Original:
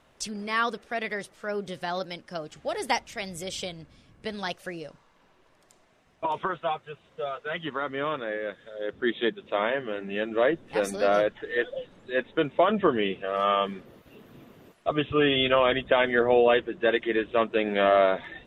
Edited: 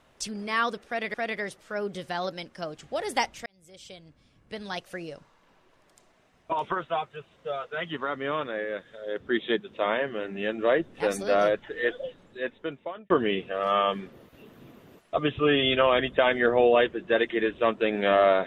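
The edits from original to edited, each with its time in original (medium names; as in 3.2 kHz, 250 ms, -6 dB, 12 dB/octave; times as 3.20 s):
0.87–1.14 s: loop, 2 plays
3.19–4.84 s: fade in
11.70–12.83 s: fade out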